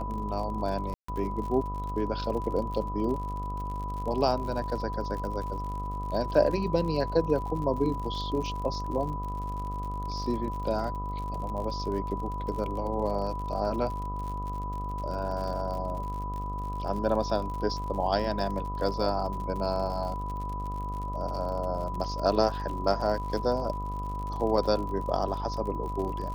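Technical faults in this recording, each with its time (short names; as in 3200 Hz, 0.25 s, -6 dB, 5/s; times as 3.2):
buzz 50 Hz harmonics 26 -35 dBFS
crackle 66/s -36 dBFS
tone 990 Hz -35 dBFS
0.94–1.08 gap 0.144 s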